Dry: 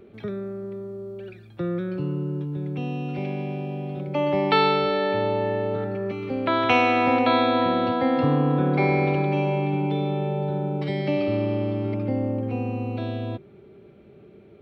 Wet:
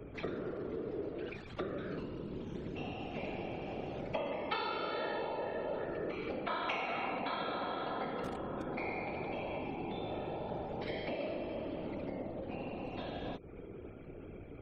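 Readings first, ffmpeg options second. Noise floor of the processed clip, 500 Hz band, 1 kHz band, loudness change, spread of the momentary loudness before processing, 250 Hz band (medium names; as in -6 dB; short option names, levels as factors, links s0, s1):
-49 dBFS, -14.0 dB, -14.5 dB, -15.5 dB, 13 LU, -16.5 dB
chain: -filter_complex "[0:a]acrossover=split=170[s0][s1];[s0]acrusher=bits=5:dc=4:mix=0:aa=0.000001[s2];[s2][s1]amix=inputs=2:normalize=0,aeval=exprs='val(0)+0.00562*(sin(2*PI*60*n/s)+sin(2*PI*2*60*n/s)/2+sin(2*PI*3*60*n/s)/3+sin(2*PI*4*60*n/s)/4+sin(2*PI*5*60*n/s)/5)':c=same,asoftclip=type=hard:threshold=0.422,acompressor=threshold=0.0178:ratio=20,afftfilt=real='re*gte(hypot(re,im),0.000631)':imag='im*gte(hypot(re,im),0.000631)':win_size=1024:overlap=0.75,lowshelf=f=320:g=-10,afftfilt=real='hypot(re,im)*cos(2*PI*random(0))':imag='hypot(re,im)*sin(2*PI*random(1))':win_size=512:overlap=0.75,volume=2.99"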